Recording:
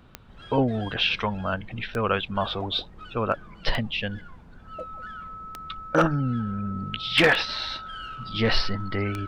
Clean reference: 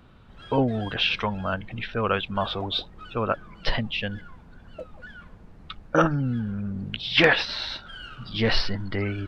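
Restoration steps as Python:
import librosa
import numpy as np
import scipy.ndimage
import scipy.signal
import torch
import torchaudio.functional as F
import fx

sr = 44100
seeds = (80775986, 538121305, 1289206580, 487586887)

y = fx.fix_declip(x, sr, threshold_db=-11.0)
y = fx.fix_declick_ar(y, sr, threshold=10.0)
y = fx.notch(y, sr, hz=1300.0, q=30.0)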